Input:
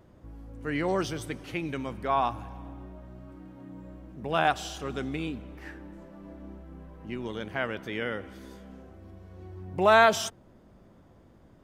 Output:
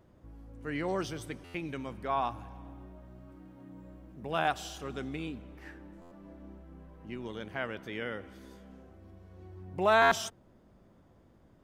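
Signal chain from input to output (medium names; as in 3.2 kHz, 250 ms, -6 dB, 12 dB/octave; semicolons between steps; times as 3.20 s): 2.68–4.87 s: treble shelf 12 kHz +6.5 dB; buffer glitch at 1.44/6.01/10.01 s, samples 512, times 8; trim -5 dB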